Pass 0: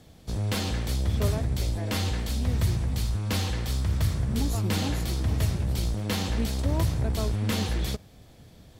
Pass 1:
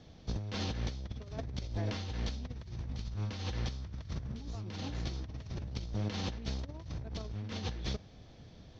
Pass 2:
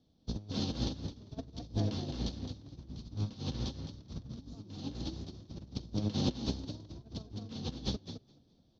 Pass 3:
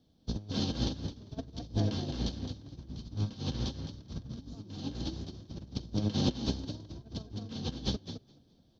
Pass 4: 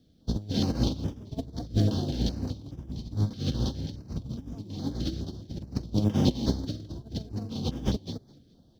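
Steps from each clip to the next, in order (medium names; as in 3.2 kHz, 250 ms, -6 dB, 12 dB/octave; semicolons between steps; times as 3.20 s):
Chebyshev low-pass 6.1 kHz, order 5; compressor with a negative ratio -30 dBFS, ratio -0.5; trim -7 dB
ten-band graphic EQ 250 Hz +8 dB, 2 kHz -11 dB, 4 kHz +7 dB; frequency-shifting echo 212 ms, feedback 34%, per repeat +39 Hz, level -3.5 dB; upward expansion 2.5:1, over -42 dBFS; trim +2.5 dB
small resonant body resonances 1.6/3.1 kHz, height 8 dB; trim +2.5 dB
in parallel at -11 dB: sample-rate reducer 3.7 kHz, jitter 0%; on the sum: step-sequenced notch 4.8 Hz 930–4200 Hz; trim +4 dB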